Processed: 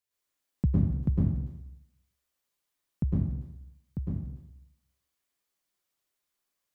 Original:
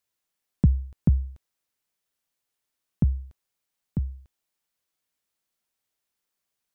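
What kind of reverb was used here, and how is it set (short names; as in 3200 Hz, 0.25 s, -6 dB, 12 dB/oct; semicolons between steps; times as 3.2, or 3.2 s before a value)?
plate-style reverb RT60 0.82 s, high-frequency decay 0.85×, pre-delay 95 ms, DRR -7 dB; gain -7.5 dB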